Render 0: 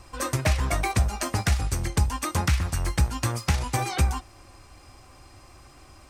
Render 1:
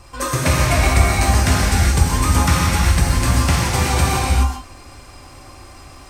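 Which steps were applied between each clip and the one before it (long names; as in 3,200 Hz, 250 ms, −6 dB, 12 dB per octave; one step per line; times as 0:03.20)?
reverb whose tail is shaped and stops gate 450 ms flat, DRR −6 dB
level +3.5 dB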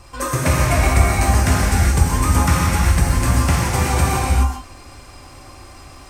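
dynamic equaliser 3,900 Hz, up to −6 dB, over −40 dBFS, Q 1.2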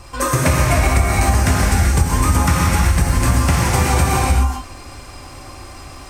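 downward compressor, threshold −15 dBFS, peak gain reduction 8 dB
level +4.5 dB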